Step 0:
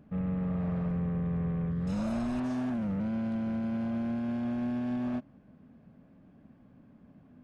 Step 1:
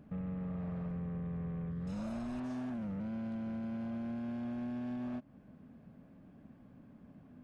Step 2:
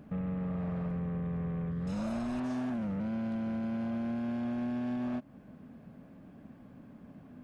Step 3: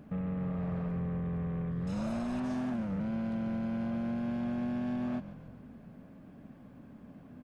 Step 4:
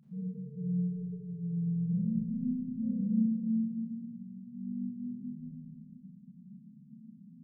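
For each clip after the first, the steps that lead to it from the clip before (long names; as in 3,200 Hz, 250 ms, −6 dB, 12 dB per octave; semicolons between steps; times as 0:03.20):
downward compressor 2.5 to 1, threshold −41 dBFS, peak gain reduction 8.5 dB
low-shelf EQ 180 Hz −4 dB; level +6.5 dB
echo with shifted repeats 141 ms, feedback 54%, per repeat −44 Hz, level −13 dB
phaser with its sweep stopped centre 430 Hz, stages 8; spectral peaks only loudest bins 4; four-comb reverb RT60 2.2 s, combs from 28 ms, DRR −9 dB; level −6 dB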